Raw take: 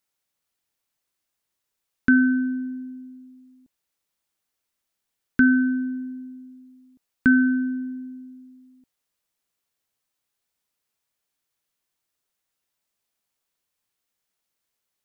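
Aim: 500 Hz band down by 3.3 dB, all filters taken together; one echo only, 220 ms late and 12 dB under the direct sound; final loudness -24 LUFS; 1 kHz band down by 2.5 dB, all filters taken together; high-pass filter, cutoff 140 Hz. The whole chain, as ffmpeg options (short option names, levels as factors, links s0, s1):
-af "highpass=140,equalizer=f=500:t=o:g=-5.5,equalizer=f=1000:t=o:g=-3.5,aecho=1:1:220:0.251"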